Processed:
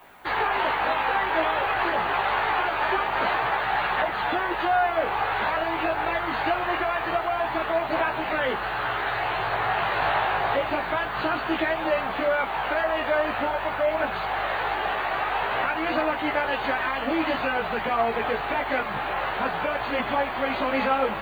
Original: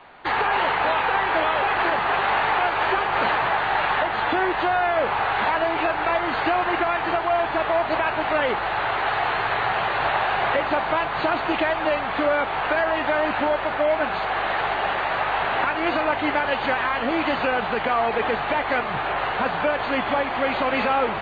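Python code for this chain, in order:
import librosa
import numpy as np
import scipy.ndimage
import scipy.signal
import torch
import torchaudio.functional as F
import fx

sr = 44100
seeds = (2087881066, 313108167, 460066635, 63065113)

y = fx.dmg_noise_colour(x, sr, seeds[0], colour='violet', level_db=-59.0)
y = fx.chorus_voices(y, sr, voices=2, hz=0.25, base_ms=17, depth_ms=1.9, mix_pct=45)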